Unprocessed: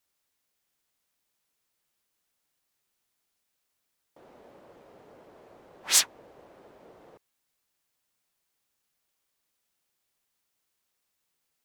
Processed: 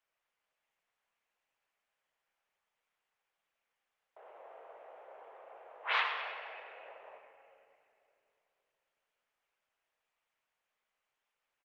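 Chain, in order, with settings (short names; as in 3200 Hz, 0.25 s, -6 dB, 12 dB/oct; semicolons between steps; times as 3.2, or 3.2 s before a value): on a send at -5 dB: reverb RT60 2.9 s, pre-delay 6 ms; on the sum: dynamic EQ 970 Hz, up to +7 dB, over -52 dBFS, Q 1.1; feedback echo 0.101 s, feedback 49%, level -9 dB; mistuned SSB +100 Hz 360–2900 Hz; Opus 32 kbps 48000 Hz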